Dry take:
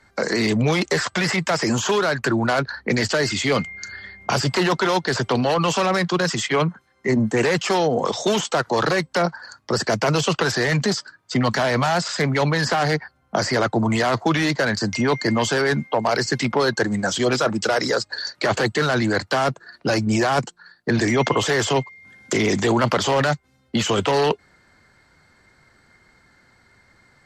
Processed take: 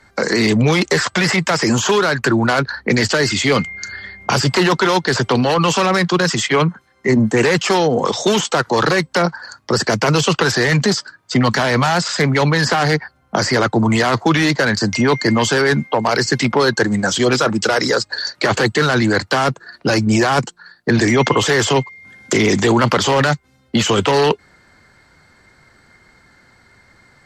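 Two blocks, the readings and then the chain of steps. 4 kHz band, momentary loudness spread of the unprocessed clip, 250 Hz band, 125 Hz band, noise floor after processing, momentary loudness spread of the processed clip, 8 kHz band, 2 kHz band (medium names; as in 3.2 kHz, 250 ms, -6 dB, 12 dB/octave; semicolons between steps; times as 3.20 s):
+5.5 dB, 5 LU, +5.5 dB, +5.5 dB, -56 dBFS, 6 LU, +5.5 dB, +5.5 dB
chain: dynamic bell 650 Hz, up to -5 dB, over -33 dBFS, Q 3.4; trim +5.5 dB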